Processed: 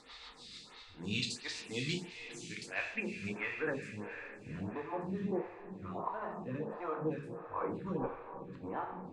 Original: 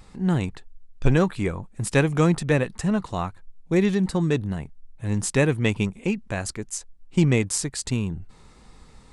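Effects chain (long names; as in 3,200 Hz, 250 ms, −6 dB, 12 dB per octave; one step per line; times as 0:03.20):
played backwards from end to start
spectral tilt +4 dB per octave
downward compressor, threshold −31 dBFS, peak gain reduction 19 dB
rotating-speaker cabinet horn 6.7 Hz
soft clipping −29 dBFS, distortion −14 dB
low-pass filter sweep 3,900 Hz → 930 Hz, 0:01.91–0:04.63
feedback delay with all-pass diffusion 513 ms, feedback 54%, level −11.5 dB
convolution reverb, pre-delay 3 ms, DRR 0.5 dB
phaser with staggered stages 1.5 Hz
level +1.5 dB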